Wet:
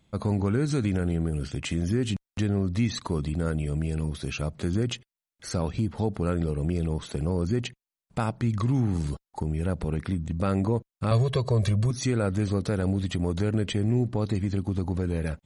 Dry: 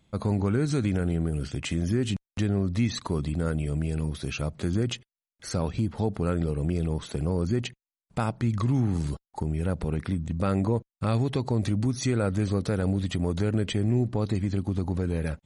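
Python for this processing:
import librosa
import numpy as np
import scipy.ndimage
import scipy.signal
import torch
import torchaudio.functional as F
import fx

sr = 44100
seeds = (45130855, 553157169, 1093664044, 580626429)

y = fx.comb(x, sr, ms=1.8, depth=0.99, at=(11.11, 11.91))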